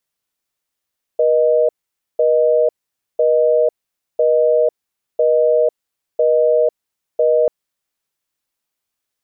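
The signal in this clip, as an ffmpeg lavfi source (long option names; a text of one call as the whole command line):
ffmpeg -f lavfi -i "aevalsrc='0.211*(sin(2*PI*480*t)+sin(2*PI*620*t))*clip(min(mod(t,1),0.5-mod(t,1))/0.005,0,1)':duration=6.29:sample_rate=44100" out.wav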